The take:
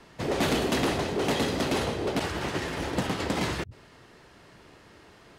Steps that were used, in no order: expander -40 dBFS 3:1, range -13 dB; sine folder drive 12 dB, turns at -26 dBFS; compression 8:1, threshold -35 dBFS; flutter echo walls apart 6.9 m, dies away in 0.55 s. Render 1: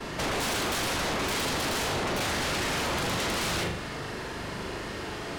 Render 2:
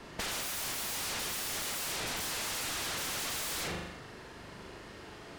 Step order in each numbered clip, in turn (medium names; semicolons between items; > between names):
compression > flutter echo > sine folder > expander; expander > flutter echo > sine folder > compression